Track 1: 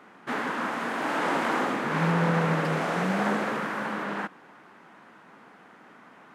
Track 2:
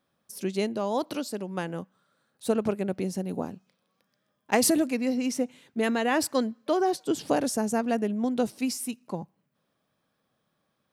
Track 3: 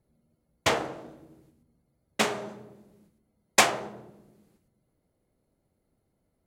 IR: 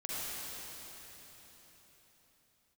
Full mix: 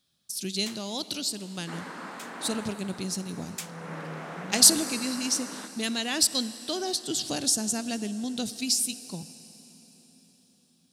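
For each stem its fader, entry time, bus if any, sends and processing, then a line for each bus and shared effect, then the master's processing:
2.52 s -12 dB -> 2.81 s -24 dB -> 3.61 s -24 dB -> 3.95 s -13 dB, 1.40 s, send -11 dB, none
+1.0 dB, 0.00 s, send -17 dB, graphic EQ 250/500/1000/2000/4000/8000 Hz -4/-11/-10/-6/+11/+7 dB
-2.5 dB, 0.00 s, no send, differentiator; auto duck -10 dB, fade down 1.20 s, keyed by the second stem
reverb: on, RT60 4.4 s, pre-delay 40 ms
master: none

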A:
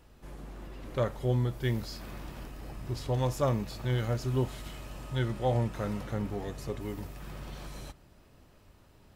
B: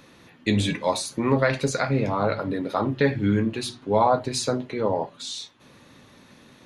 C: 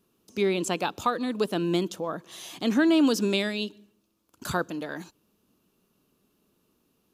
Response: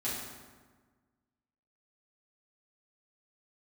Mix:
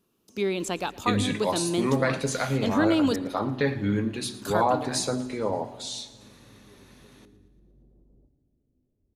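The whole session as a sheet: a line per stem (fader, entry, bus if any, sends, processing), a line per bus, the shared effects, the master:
-10.5 dB, 0.35 s, send -11.5 dB, no echo send, compression, threshold -36 dBFS, peak gain reduction 12.5 dB; four-pole ladder low-pass 470 Hz, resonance 30%
-4.5 dB, 0.60 s, send -18.5 dB, echo send -17.5 dB, treble shelf 7.6 kHz +9 dB
-2.0 dB, 0.00 s, muted 3.16–3.89 s, no send, echo send -22 dB, none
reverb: on, RT60 1.4 s, pre-delay 4 ms
echo: feedback delay 115 ms, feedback 58%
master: none

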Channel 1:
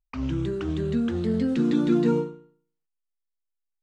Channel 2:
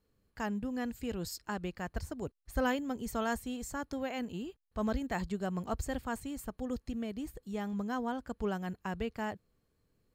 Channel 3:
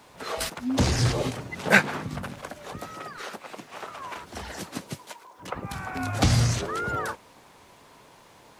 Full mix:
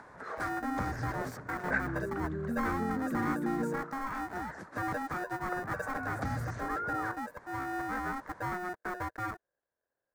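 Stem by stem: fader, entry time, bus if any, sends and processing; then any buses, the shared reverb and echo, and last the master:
-4.0 dB, 1.55 s, bus A, no send, none
-11.0 dB, 0.00 s, no bus, no send, waveshaping leveller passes 3; polarity switched at an audio rate 540 Hz
-9.5 dB, 0.00 s, bus A, no send, upward compressor, threshold -36 dBFS
bus A: 0.0 dB, low-pass 9.1 kHz; compression 2:1, threshold -37 dBFS, peak gain reduction 9 dB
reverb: none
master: resonant high shelf 2.2 kHz -9.5 dB, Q 3

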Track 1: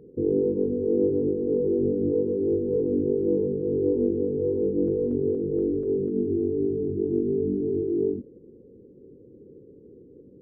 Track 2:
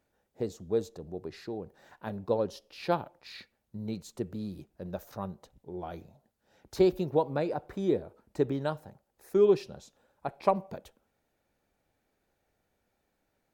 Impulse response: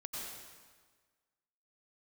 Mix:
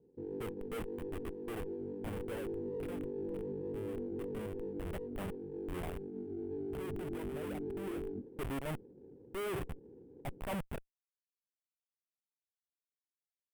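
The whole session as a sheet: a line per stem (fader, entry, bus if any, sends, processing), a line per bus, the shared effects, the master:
2.02 s -18 dB -> 2.61 s -5.5 dB -> 4.21 s -5.5 dB -> 4.90 s -18 dB -> 6.31 s -18 dB -> 6.52 s -7 dB, 0.00 s, send -23.5 dB, steep low-pass 810 Hz 48 dB/octave; sliding maximum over 5 samples
0.0 dB, 0.00 s, no send, single-diode clipper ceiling -18.5 dBFS; Schmitt trigger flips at -37 dBFS; high-order bell 5.2 kHz -11.5 dB 1.1 oct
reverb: on, RT60 1.5 s, pre-delay 83 ms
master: peak limiter -33.5 dBFS, peak gain reduction 16 dB

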